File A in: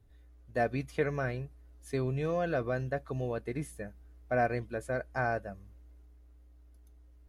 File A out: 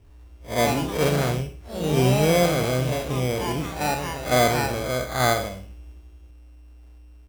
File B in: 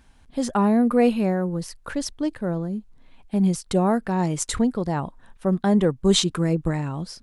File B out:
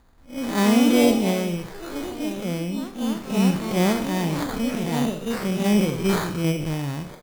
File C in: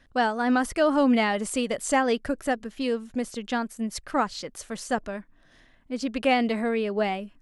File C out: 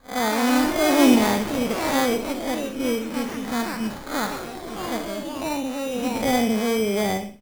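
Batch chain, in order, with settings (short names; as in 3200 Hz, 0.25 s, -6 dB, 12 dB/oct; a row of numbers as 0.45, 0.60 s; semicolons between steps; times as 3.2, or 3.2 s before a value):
time blur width 0.129 s; high shelf 8400 Hz +4.5 dB; in parallel at -2.5 dB: level quantiser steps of 11 dB; on the sum: sample-and-hold 16×; on a send: feedback echo 63 ms, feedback 33%, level -12 dB; on the sum: echoes that change speed 0.18 s, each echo +3 st, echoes 3, each echo -6 dB; match loudness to -23 LUFS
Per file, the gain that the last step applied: +8.5, -2.5, +2.0 dB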